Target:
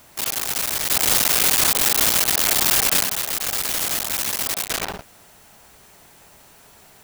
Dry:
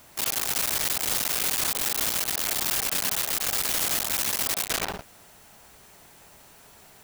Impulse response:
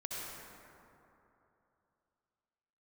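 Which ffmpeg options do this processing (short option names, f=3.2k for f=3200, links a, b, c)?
-filter_complex "[0:a]asplit=3[a][b][c];[a]afade=t=out:st=0.9:d=0.02[d];[b]acontrast=56,afade=t=in:st=0.9:d=0.02,afade=t=out:st=3.03:d=0.02[e];[c]afade=t=in:st=3.03:d=0.02[f];[d][e][f]amix=inputs=3:normalize=0,volume=2.5dB"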